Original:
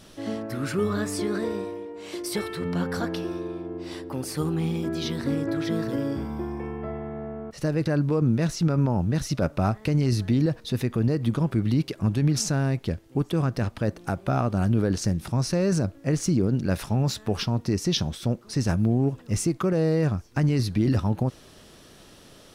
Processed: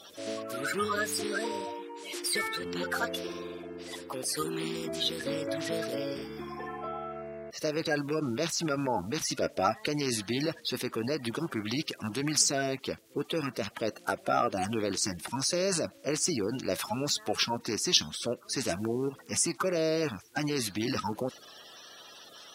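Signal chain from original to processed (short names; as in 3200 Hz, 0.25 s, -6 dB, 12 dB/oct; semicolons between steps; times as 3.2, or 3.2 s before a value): bin magnitudes rounded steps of 30 dB; HPF 1200 Hz 6 dB/oct; gain +4.5 dB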